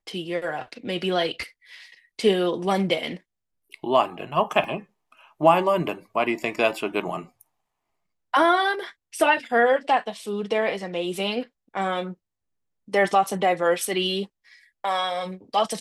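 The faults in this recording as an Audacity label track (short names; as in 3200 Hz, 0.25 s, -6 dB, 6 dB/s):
4.640000	4.640000	gap 2.2 ms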